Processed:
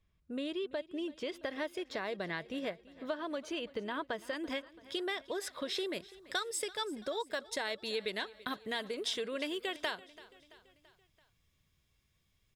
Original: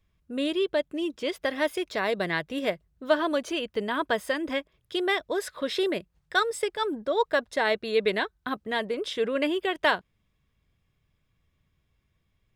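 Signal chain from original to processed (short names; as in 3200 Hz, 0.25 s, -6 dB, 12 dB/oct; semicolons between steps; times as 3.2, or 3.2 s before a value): high shelf 3800 Hz -7 dB, from 4.33 s +2 dB, from 5.93 s +9.5 dB; compressor 4:1, threshold -31 dBFS, peak gain reduction 13 dB; bell 5300 Hz +4.5 dB 1.7 oct; feedback echo 0.335 s, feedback 55%, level -19.5 dB; gain -4.5 dB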